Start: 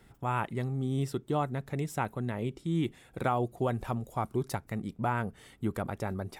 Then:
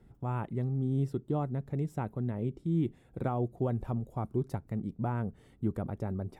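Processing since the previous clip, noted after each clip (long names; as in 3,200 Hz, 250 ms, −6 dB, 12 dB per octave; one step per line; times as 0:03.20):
tilt shelving filter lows +8.5 dB, about 820 Hz
level −6.5 dB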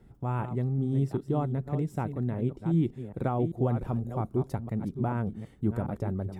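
delay that plays each chunk backwards 391 ms, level −9 dB
level +3 dB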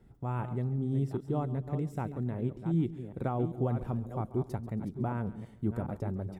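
repeating echo 138 ms, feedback 38%, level −17 dB
level −3.5 dB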